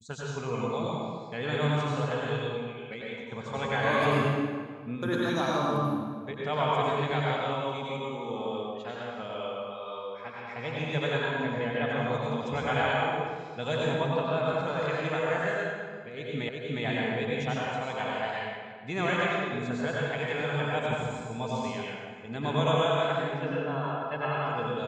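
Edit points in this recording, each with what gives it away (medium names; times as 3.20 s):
16.49 s: repeat of the last 0.36 s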